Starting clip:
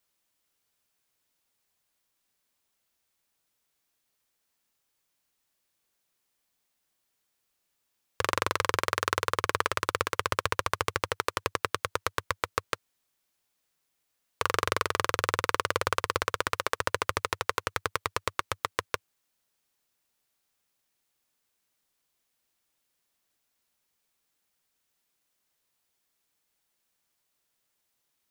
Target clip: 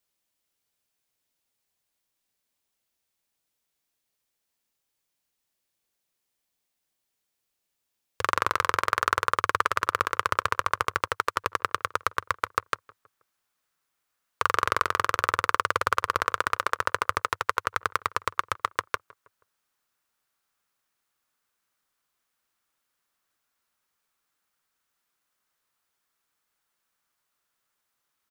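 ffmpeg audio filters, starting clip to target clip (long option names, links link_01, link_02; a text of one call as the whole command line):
ffmpeg -i in.wav -filter_complex "[0:a]asetnsamples=nb_out_samples=441:pad=0,asendcmd='8.22 equalizer g 9',equalizer=frequency=1300:width=1.4:gain=-2,asplit=2[link_01][link_02];[link_02]adelay=160,lowpass=frequency=1600:poles=1,volume=-22.5dB,asplit=2[link_03][link_04];[link_04]adelay=160,lowpass=frequency=1600:poles=1,volume=0.48,asplit=2[link_05][link_06];[link_06]adelay=160,lowpass=frequency=1600:poles=1,volume=0.48[link_07];[link_01][link_03][link_05][link_07]amix=inputs=4:normalize=0,volume=-2.5dB" out.wav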